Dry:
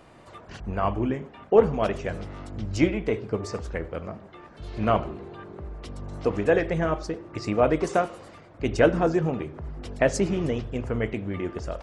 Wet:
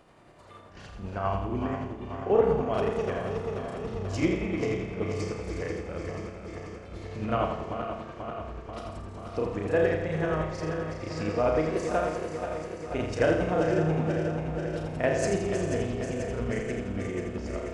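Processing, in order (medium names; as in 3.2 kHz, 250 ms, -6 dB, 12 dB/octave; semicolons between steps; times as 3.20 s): backward echo that repeats 163 ms, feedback 83%, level -8 dB; flutter echo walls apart 8.6 m, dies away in 0.54 s; granular stretch 1.5×, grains 193 ms; trim -5 dB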